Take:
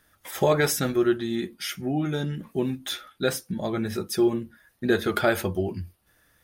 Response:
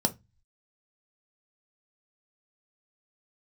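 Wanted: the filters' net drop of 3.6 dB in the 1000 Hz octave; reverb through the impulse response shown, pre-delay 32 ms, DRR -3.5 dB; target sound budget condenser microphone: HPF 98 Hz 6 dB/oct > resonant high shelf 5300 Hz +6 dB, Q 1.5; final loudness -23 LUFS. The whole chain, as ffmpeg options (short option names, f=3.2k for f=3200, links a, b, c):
-filter_complex "[0:a]equalizer=f=1k:t=o:g=-5,asplit=2[a][b];[1:a]atrim=start_sample=2205,adelay=32[c];[b][c]afir=irnorm=-1:irlink=0,volume=-4.5dB[d];[a][d]amix=inputs=2:normalize=0,highpass=f=98:p=1,highshelf=f=5.3k:t=q:w=1.5:g=6,volume=-4.5dB"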